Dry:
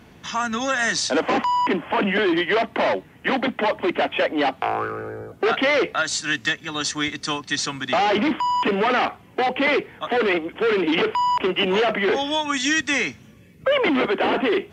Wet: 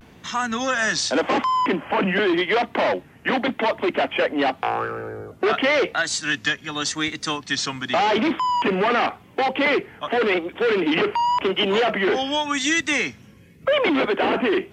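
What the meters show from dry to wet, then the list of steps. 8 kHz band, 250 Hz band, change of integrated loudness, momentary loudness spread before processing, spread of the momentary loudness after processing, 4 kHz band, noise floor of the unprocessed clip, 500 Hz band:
0.0 dB, 0.0 dB, 0.0 dB, 6 LU, 6 LU, 0.0 dB, -49 dBFS, 0.0 dB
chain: vibrato 0.88 Hz 82 cents

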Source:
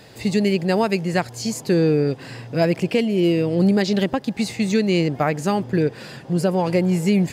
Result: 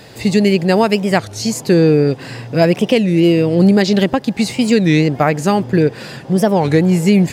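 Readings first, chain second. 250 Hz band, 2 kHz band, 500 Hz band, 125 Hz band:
+6.5 dB, +6.5 dB, +6.5 dB, +6.5 dB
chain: record warp 33 1/3 rpm, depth 250 cents; gain +6.5 dB

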